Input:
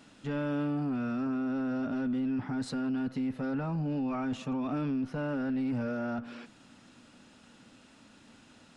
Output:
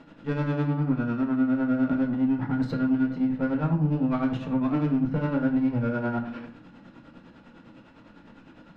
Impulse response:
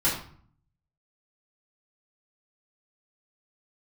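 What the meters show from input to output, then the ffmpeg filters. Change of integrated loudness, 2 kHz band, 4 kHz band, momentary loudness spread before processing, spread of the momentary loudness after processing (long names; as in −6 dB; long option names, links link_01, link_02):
+7.0 dB, +5.5 dB, can't be measured, 3 LU, 5 LU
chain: -filter_complex "[0:a]adynamicsmooth=sensitivity=4:basefreq=2300,asoftclip=type=tanh:threshold=-27dB,tremolo=f=9.9:d=0.75,asplit=2[link_01][link_02];[1:a]atrim=start_sample=2205[link_03];[link_02][link_03]afir=irnorm=-1:irlink=0,volume=-12.5dB[link_04];[link_01][link_04]amix=inputs=2:normalize=0,volume=7.5dB"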